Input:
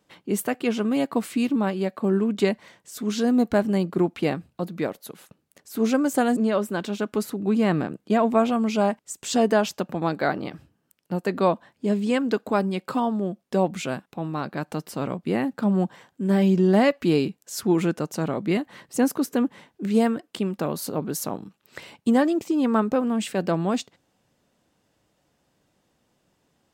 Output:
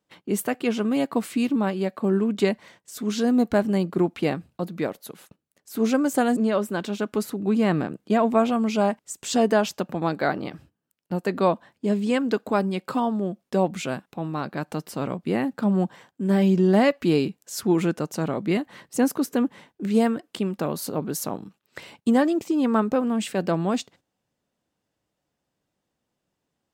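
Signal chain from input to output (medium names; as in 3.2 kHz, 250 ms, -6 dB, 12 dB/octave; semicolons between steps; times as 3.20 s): gate -51 dBFS, range -11 dB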